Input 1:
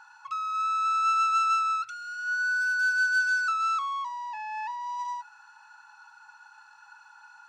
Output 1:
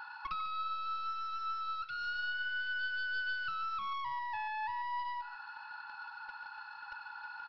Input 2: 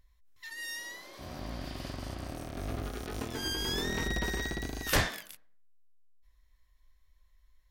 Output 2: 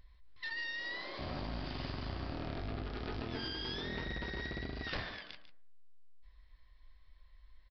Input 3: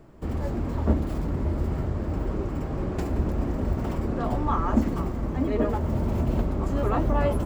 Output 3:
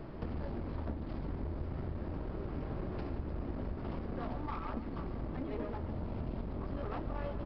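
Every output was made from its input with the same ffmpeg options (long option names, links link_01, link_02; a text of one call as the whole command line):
ffmpeg -i in.wav -af "acompressor=threshold=-40dB:ratio=8,aresample=11025,aeval=exprs='clip(val(0),-1,0.00531)':channel_layout=same,aresample=44100,aecho=1:1:146:0.224,volume=5.5dB" out.wav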